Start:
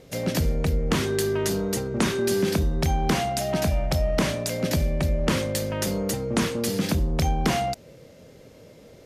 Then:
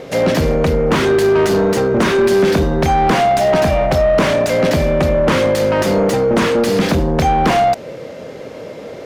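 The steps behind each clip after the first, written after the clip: overdrive pedal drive 24 dB, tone 1100 Hz, clips at -11 dBFS; gain +7 dB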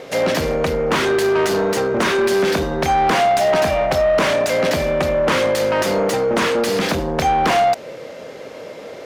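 low shelf 330 Hz -10.5 dB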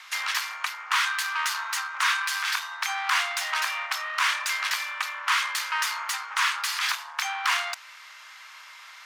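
steep high-pass 1000 Hz 48 dB/oct; gain -2 dB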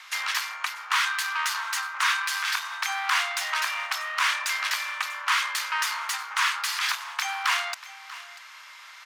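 echo 0.64 s -17 dB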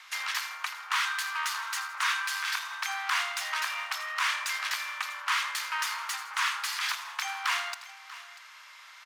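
feedback echo 81 ms, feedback 45%, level -13 dB; gain -4.5 dB

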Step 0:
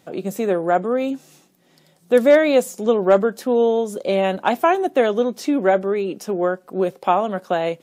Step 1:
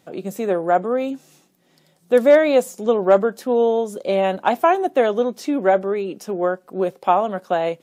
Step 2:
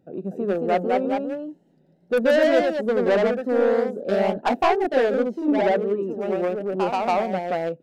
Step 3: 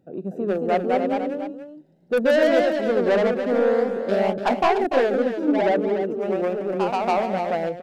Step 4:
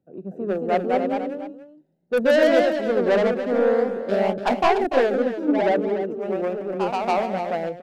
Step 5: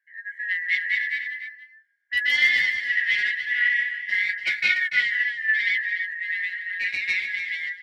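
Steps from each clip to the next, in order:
dynamic EQ 790 Hz, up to +4 dB, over -24 dBFS, Q 0.82; gain -2.5 dB
Wiener smoothing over 41 samples; soft clip -15.5 dBFS, distortion -9 dB; echoes that change speed 0.246 s, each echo +1 st, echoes 2
echo 0.291 s -9 dB
three-band expander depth 40%
four-band scrambler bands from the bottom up 4123; flange 0.27 Hz, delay 8.6 ms, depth 6.4 ms, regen -17%

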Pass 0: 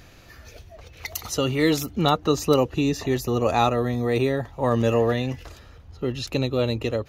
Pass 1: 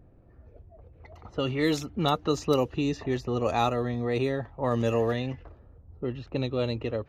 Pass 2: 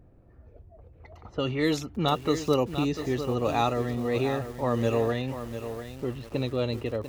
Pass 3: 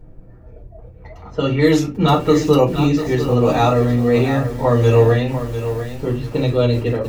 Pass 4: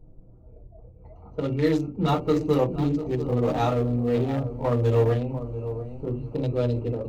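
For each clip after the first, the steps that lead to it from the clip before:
low-pass opened by the level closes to 500 Hz, open at -15.5 dBFS; wow and flutter 19 cents; gain -5 dB
lo-fi delay 0.696 s, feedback 35%, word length 7-bit, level -9.5 dB
reverb, pre-delay 5 ms, DRR -3.5 dB; gain +3 dB
Wiener smoothing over 25 samples; gain -8 dB

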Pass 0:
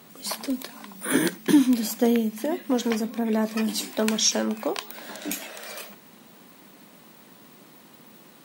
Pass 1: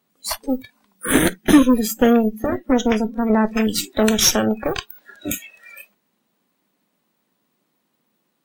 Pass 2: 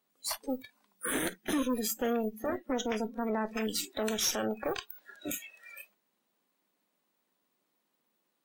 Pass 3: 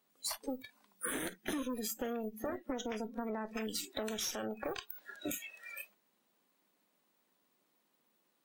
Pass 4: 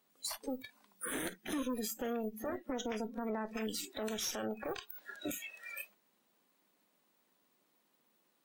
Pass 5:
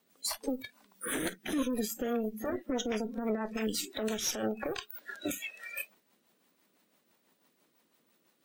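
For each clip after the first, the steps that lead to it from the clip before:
added harmonics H 8 -16 dB, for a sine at -7.5 dBFS; spectral noise reduction 25 dB; gain +5.5 dB
limiter -12 dBFS, peak gain reduction 10.5 dB; tone controls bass -9 dB, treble +1 dB; gain -8 dB
compressor 6:1, threshold -37 dBFS, peak gain reduction 11 dB; gain +2 dB
limiter -29 dBFS, peak gain reduction 8 dB; gain +1.5 dB
rotary speaker horn 6 Hz; gain +7 dB

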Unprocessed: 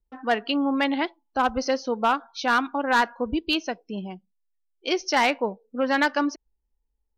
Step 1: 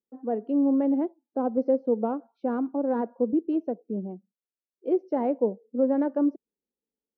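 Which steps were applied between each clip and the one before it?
Chebyshev band-pass 210–520 Hz, order 2; AGC gain up to 3 dB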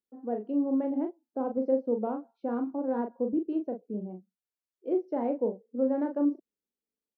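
doubler 38 ms -6 dB; gain -5 dB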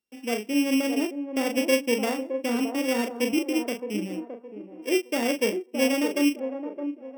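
sample sorter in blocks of 16 samples; band-limited delay 0.616 s, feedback 33%, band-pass 550 Hz, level -6.5 dB; gain +4 dB

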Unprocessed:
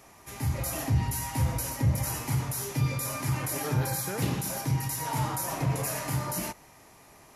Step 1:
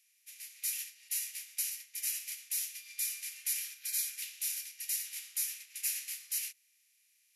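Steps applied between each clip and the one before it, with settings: per-bin compression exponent 0.6; steep high-pass 2200 Hz 36 dB/oct; upward expander 2.5:1, over -46 dBFS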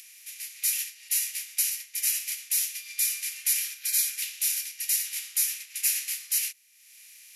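upward compressor, threshold -48 dBFS; gain +9 dB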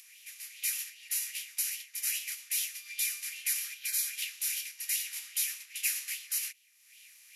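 LFO bell 2.5 Hz 920–3300 Hz +10 dB; gain -6.5 dB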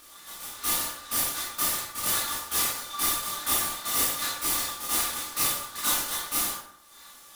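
minimum comb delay 3.4 ms; ring modulator 1200 Hz; reverb RT60 0.75 s, pre-delay 12 ms, DRR -6.5 dB; gain +4.5 dB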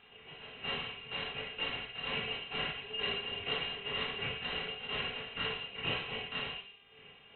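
buzz 400 Hz, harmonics 32, -60 dBFS; resonant low shelf 730 Hz -8.5 dB, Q 1.5; inverted band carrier 4000 Hz; gain -4.5 dB

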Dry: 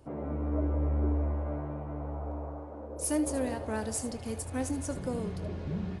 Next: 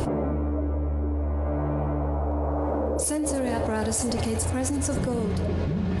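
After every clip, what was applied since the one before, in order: fast leveller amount 100%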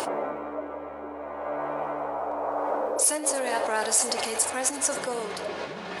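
HPF 720 Hz 12 dB/oct; gain +6 dB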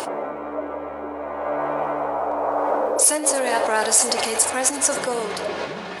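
AGC gain up to 5 dB; gain +1.5 dB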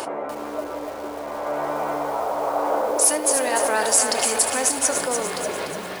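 lo-fi delay 0.294 s, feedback 55%, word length 6-bit, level -6 dB; gain -1.5 dB

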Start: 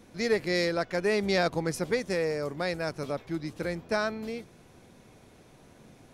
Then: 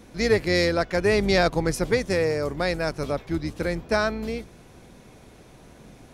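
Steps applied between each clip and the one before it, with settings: octaver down 2 oct, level -5 dB; gain +5.5 dB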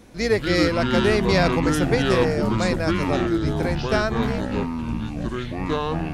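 echoes that change speed 0.157 s, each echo -6 st, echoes 3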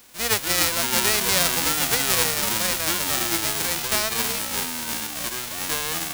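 spectral whitening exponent 0.1; gain -2.5 dB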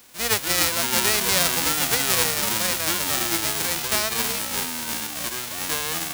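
HPF 41 Hz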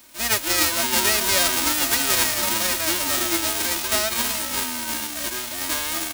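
comb 3.2 ms, depth 77%; gain -1 dB

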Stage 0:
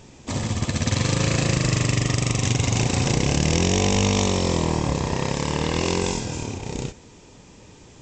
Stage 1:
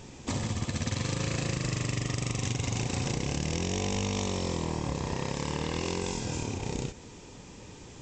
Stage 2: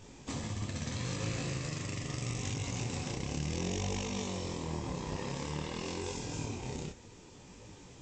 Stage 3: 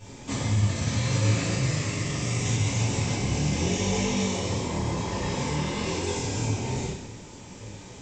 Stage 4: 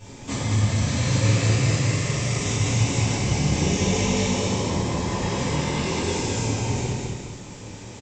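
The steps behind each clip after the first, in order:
notch 630 Hz, Q 20; compressor 4:1, threshold -29 dBFS, peak gain reduction 11.5 dB
detuned doubles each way 27 cents; gain -2 dB
reverb, pre-delay 3 ms, DRR -9.5 dB
feedback echo 0.206 s, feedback 39%, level -3.5 dB; gain +2 dB

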